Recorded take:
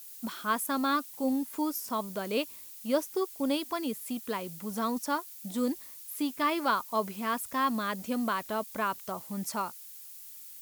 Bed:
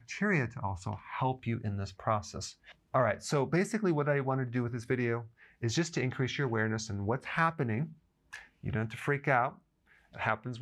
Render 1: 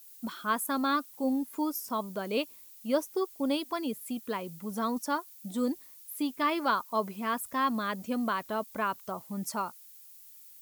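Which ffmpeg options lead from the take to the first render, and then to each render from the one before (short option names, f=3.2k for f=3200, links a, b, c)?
-af "afftdn=nr=7:nf=-47"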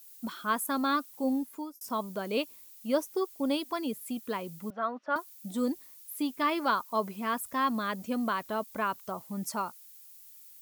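-filter_complex "[0:a]asettb=1/sr,asplit=3[a][b][c];[a]atrim=end=4.704[d];[b]atrim=start=4.7:end=5.16,asetpts=PTS-STARTPTS,afade=t=in:d=0.004:c=qsin,afade=t=out:st=0.456:d=0.004:c=qsin,highpass=420,equalizer=f=420:t=q:w=4:g=-6,equalizer=f=630:t=q:w=4:g=8,equalizer=f=930:t=q:w=4:g=-6,equalizer=f=1.4k:t=q:w=4:g=6,equalizer=f=2.3k:t=q:w=4:g=-4,lowpass=f=2.8k:w=0.5412,lowpass=f=2.8k:w=1.3066[e];[c]atrim=start=5.156[f];[d][e]acrossfade=d=0.004:c1=hsin:c2=qsin[g];[g][f]acrossfade=d=0.004:c1=qsin:c2=hsin,asplit=2[h][i];[h]atrim=end=1.81,asetpts=PTS-STARTPTS,afade=t=out:st=1.37:d=0.44[j];[i]atrim=start=1.81,asetpts=PTS-STARTPTS,afade=t=in:d=0.004:c=hsin[k];[j][k]concat=n=2:v=0:a=1"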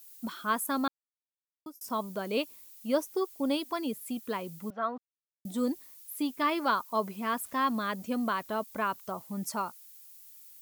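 -filter_complex "[0:a]asettb=1/sr,asplit=3[a][b][c];[a]atrim=end=7.244[d];[b]atrim=start=7.24:end=7.92,asetpts=PTS-STARTPTS,afade=t=in:d=0.004:c=qsin,afade=t=out:st=0.676:d=0.004:c=qsin,aeval=exprs='val(0)*gte(abs(val(0)),0.00266)':c=same[e];[c]atrim=start=7.916[f];[d][e]acrossfade=d=0.004:c1=hsin:c2=qsin[g];[g][f]acrossfade=d=0.004:c1=qsin:c2=hsin,asplit=5[h][i][j][k][l];[h]atrim=end=0.88,asetpts=PTS-STARTPTS,afade=t=out:st=0.876:d=0.004:c=hsin[m];[i]atrim=start=0.88:end=1.66,asetpts=PTS-STARTPTS,volume=0[n];[j]atrim=start=1.66:end=4.98,asetpts=PTS-STARTPTS,afade=t=in:d=0.004:c=hsin,afade=t=out:st=3.316:d=0.004:c=hsin[o];[k]atrim=start=4.98:end=5.45,asetpts=PTS-STARTPTS,volume=0[p];[l]atrim=start=5.45,asetpts=PTS-STARTPTS,afade=t=in:d=0.004:c=hsin[q];[m][n][o][p][q]concat=n=5:v=0:a=1"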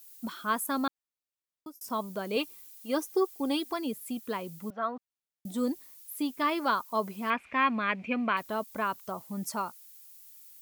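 -filter_complex "[0:a]asettb=1/sr,asplit=3[a][b][c];[a]atrim=end=2.364[d];[b]atrim=start=2.36:end=3.74,asetpts=PTS-STARTPTS,afade=t=in:d=0.004:c=qsin,afade=t=out:st=1.376:d=0.004:c=qsin,aecho=1:1:2.5:0.65,atrim=end_sample=60858[e];[c]atrim=start=3.736[f];[d][e]acrossfade=d=0.004:c1=hsin:c2=qsin[g];[g][f]acrossfade=d=0.004:c1=qsin:c2=hsin,asettb=1/sr,asplit=3[h][i][j];[h]atrim=end=7.304[k];[i]atrim=start=7.3:end=8.37,asetpts=PTS-STARTPTS,afade=t=in:d=0.004:c=qsin,afade=t=out:st=1.066:d=0.004:c=qsin,lowpass=f=2.4k:t=q:w=10[l];[j]atrim=start=8.366[m];[k][l]acrossfade=d=0.004:c1=hsin:c2=qsin[n];[n][m]acrossfade=d=0.004:c1=qsin:c2=hsin"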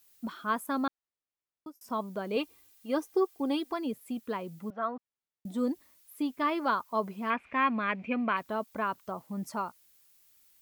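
-af "highshelf=f=4k:g=-11.5"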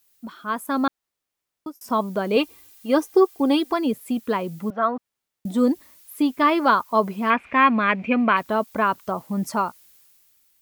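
-af "dynaudnorm=f=130:g=11:m=11dB"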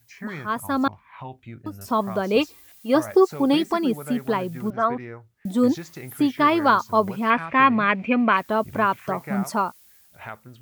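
-filter_complex "[1:a]volume=-6dB[a];[0:a][a]amix=inputs=2:normalize=0"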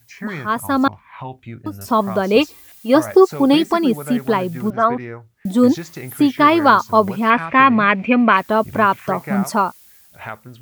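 -af "volume=6dB,alimiter=limit=-1dB:level=0:latency=1"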